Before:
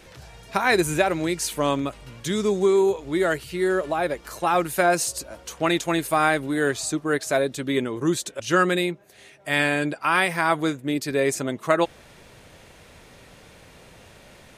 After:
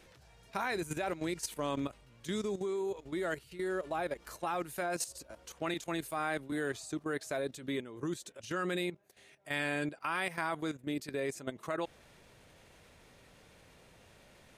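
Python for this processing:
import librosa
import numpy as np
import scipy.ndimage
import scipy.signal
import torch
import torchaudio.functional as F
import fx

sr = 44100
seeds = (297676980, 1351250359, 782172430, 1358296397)

y = fx.level_steps(x, sr, step_db=13)
y = fx.band_widen(y, sr, depth_pct=70, at=(5.74, 6.52))
y = F.gain(torch.from_numpy(y), -8.0).numpy()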